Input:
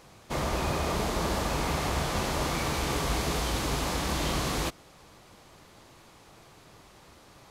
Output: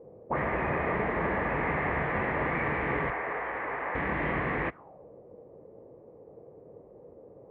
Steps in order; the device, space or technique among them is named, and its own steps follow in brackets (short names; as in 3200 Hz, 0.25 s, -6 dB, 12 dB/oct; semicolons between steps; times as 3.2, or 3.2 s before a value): envelope filter bass rig (envelope low-pass 450–1900 Hz up, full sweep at -27.5 dBFS; speaker cabinet 67–2400 Hz, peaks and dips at 74 Hz -5 dB, 460 Hz +4 dB, 1400 Hz -6 dB); 3.1–3.95 three-band isolator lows -18 dB, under 420 Hz, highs -13 dB, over 2300 Hz; gain -1 dB